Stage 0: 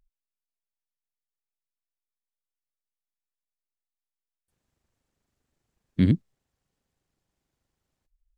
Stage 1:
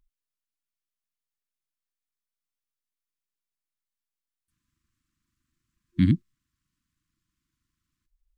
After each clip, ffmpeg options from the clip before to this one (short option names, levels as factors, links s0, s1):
-af "afftfilt=real='re*(1-between(b*sr/4096,350,990))':imag='im*(1-between(b*sr/4096,350,990))':win_size=4096:overlap=0.75"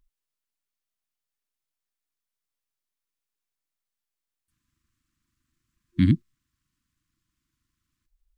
-af "equalizer=f=180:t=o:w=0.33:g=-3,volume=1.26"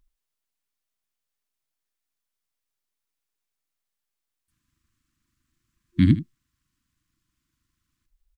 -af "aecho=1:1:78:0.188,volume=1.26"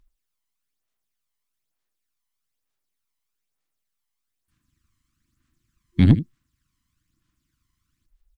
-af "aphaser=in_gain=1:out_gain=1:delay=1:decay=0.45:speed=1.1:type=sinusoidal,aeval=exprs='0.794*(cos(1*acos(clip(val(0)/0.794,-1,1)))-cos(1*PI/2))+0.0447*(cos(6*acos(clip(val(0)/0.794,-1,1)))-cos(6*PI/2))':c=same"